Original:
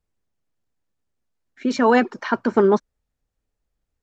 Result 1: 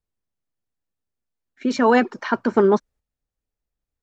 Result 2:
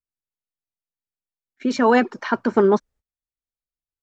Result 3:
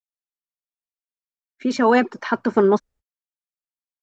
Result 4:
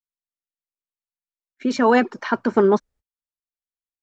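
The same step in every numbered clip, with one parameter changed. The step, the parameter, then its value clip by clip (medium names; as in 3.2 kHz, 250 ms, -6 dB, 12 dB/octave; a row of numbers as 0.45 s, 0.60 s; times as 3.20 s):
gate, range: -7 dB, -22 dB, -49 dB, -35 dB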